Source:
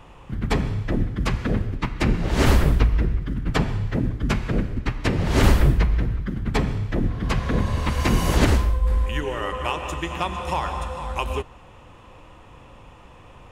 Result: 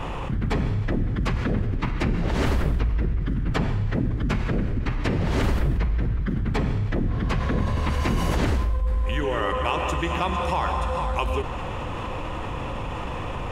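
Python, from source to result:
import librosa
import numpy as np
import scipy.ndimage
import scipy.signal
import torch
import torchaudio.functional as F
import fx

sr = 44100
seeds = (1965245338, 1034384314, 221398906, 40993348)

y = fx.high_shelf(x, sr, hz=5200.0, db=-7.5)
y = fx.env_flatten(y, sr, amount_pct=70)
y = y * librosa.db_to_amplitude(-8.0)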